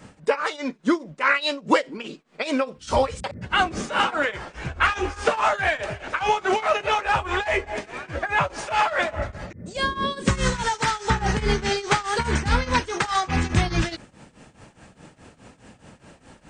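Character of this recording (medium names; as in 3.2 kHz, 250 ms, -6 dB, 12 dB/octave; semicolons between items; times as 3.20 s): tremolo triangle 4.8 Hz, depth 90%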